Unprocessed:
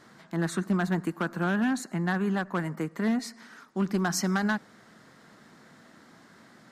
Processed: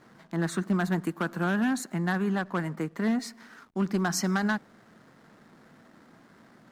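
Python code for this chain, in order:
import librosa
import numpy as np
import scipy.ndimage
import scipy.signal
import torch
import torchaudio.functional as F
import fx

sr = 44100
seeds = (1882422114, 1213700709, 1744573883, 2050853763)

y = fx.high_shelf(x, sr, hz=11000.0, db=9.0, at=(0.75, 2.24))
y = fx.backlash(y, sr, play_db=-53.0)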